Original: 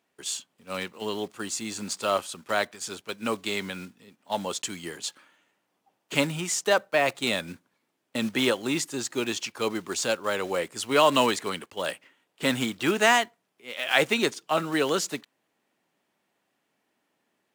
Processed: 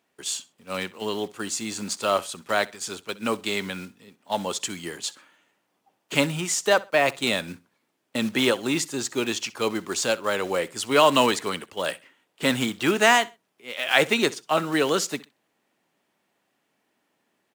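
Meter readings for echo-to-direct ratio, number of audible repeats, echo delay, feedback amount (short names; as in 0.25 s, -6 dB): -21.0 dB, 2, 64 ms, 24%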